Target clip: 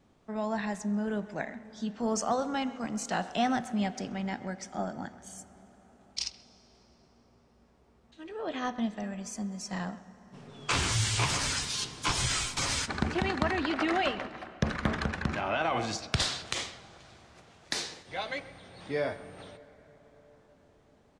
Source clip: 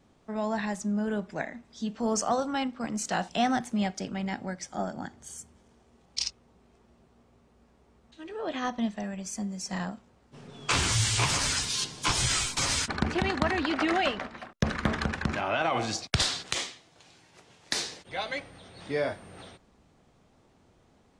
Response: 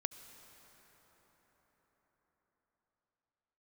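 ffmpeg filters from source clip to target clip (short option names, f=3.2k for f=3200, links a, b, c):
-filter_complex "[0:a]asplit=2[a][b];[b]adelay=130,highpass=300,lowpass=3.4k,asoftclip=type=hard:threshold=-19.5dB,volume=-17dB[c];[a][c]amix=inputs=2:normalize=0,asplit=2[d][e];[1:a]atrim=start_sample=2205,highshelf=f=6.6k:g=-9.5[f];[e][f]afir=irnorm=-1:irlink=0,volume=-2dB[g];[d][g]amix=inputs=2:normalize=0,volume=-6.5dB"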